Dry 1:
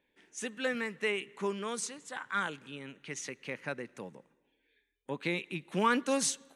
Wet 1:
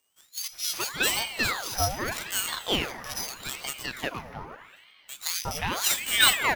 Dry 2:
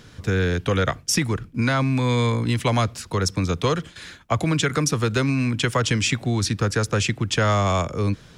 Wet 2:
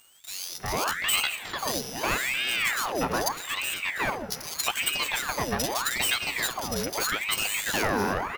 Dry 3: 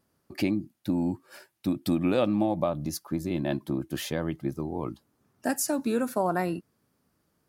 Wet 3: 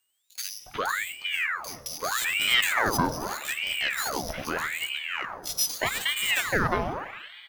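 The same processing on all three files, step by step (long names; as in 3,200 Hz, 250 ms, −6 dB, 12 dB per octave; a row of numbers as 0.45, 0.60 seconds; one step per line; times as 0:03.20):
samples sorted by size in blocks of 8 samples
low-shelf EQ 480 Hz −6 dB
three-band delay without the direct sound highs, mids, lows 360/450 ms, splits 260/3,000 Hz
pitch vibrato 9.6 Hz 6.5 cents
dense smooth reverb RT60 2.9 s, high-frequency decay 0.5×, DRR 10.5 dB
ring modulator whose carrier an LFO sweeps 1,500 Hz, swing 80%, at 0.81 Hz
loudness normalisation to −27 LKFS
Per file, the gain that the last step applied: +12.0, 0.0, +7.5 decibels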